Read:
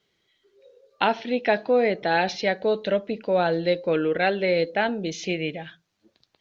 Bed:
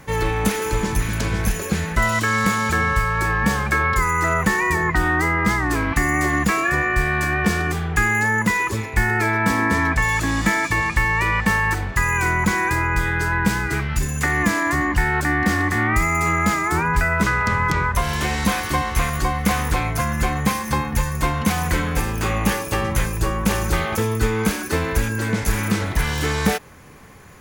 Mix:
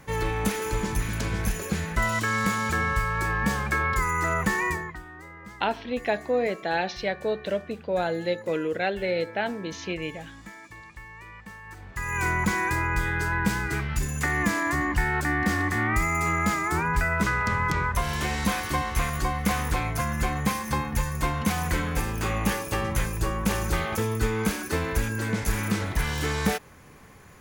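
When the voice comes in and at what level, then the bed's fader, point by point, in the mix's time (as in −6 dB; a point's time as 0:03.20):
4.60 s, −4.5 dB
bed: 0:04.68 −6 dB
0:05.05 −25 dB
0:11.63 −25 dB
0:12.23 −5.5 dB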